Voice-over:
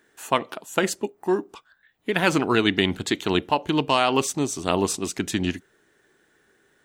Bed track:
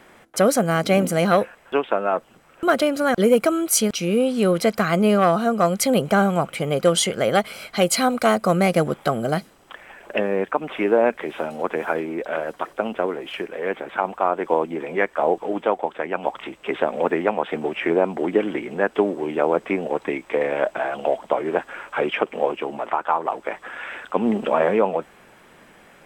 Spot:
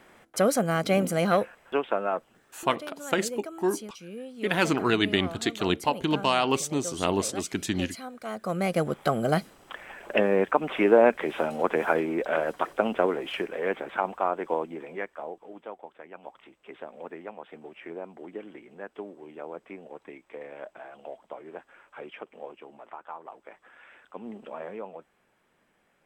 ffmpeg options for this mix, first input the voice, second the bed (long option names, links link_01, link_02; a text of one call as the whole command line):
ffmpeg -i stem1.wav -i stem2.wav -filter_complex "[0:a]adelay=2350,volume=-3.5dB[link_01];[1:a]volume=14.5dB,afade=type=out:start_time=2.02:duration=0.69:silence=0.177828,afade=type=in:start_time=8.24:duration=1.26:silence=0.1,afade=type=out:start_time=13.08:duration=2.24:silence=0.112202[link_02];[link_01][link_02]amix=inputs=2:normalize=0" out.wav